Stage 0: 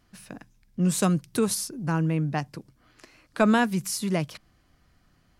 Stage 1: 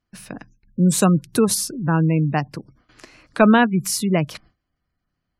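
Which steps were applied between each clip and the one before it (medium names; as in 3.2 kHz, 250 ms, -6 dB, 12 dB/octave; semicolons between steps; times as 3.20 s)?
gate with hold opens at -50 dBFS; spectral gate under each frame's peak -30 dB strong; trim +7 dB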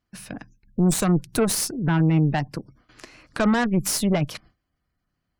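Chebyshev shaper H 8 -19 dB, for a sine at -1 dBFS; peak limiter -11.5 dBFS, peak gain reduction 10 dB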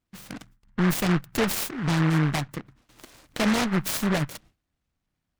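delay time shaken by noise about 1.3 kHz, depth 0.21 ms; trim -3 dB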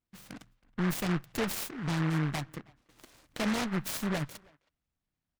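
speakerphone echo 320 ms, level -24 dB; trim -7.5 dB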